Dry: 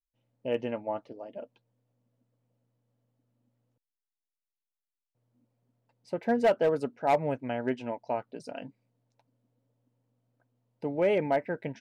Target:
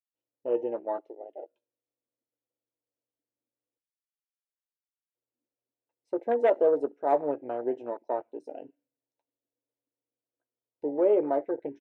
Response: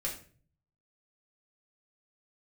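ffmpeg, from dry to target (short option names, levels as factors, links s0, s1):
-filter_complex "[0:a]bandreject=f=4700:w=6.4,asplit=2[s0][s1];[s1]adelay=14,volume=0.316[s2];[s0][s2]amix=inputs=2:normalize=0,asplit=2[s3][s4];[1:a]atrim=start_sample=2205,asetrate=37485,aresample=44100[s5];[s4][s5]afir=irnorm=-1:irlink=0,volume=0.141[s6];[s3][s6]amix=inputs=2:normalize=0,afwtdn=0.0224,highpass=55,lowshelf=f=250:t=q:w=3:g=-10.5,volume=0.75"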